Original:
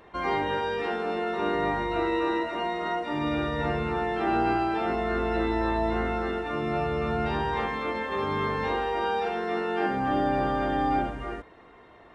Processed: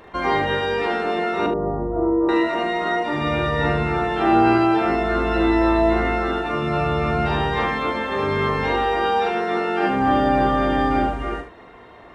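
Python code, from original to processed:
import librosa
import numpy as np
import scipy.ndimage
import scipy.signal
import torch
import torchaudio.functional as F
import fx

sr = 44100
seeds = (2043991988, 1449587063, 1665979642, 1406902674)

p1 = fx.bessel_lowpass(x, sr, hz=640.0, order=8, at=(1.46, 2.29))
p2 = p1 + fx.room_early_taps(p1, sr, ms=(42, 75), db=(-7.5, -10.5), dry=0)
y = p2 * librosa.db_to_amplitude(7.0)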